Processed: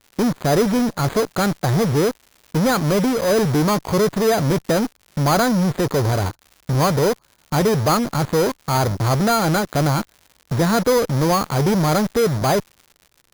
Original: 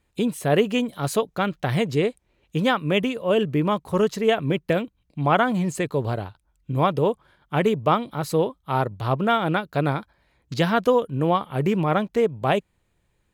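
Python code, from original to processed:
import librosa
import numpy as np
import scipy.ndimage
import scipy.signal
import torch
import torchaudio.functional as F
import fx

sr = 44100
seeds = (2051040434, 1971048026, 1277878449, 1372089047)

p1 = scipy.ndimage.median_filter(x, 15, mode='constant')
p2 = fx.fuzz(p1, sr, gain_db=47.0, gate_db=-41.0)
p3 = p1 + F.gain(torch.from_numpy(p2), -3.0).numpy()
p4 = np.repeat(scipy.signal.resample_poly(p3, 1, 8), 8)[:len(p3)]
p5 = fx.dmg_crackle(p4, sr, seeds[0], per_s=180.0, level_db=-32.0)
y = F.gain(torch.from_numpy(p5), -3.5).numpy()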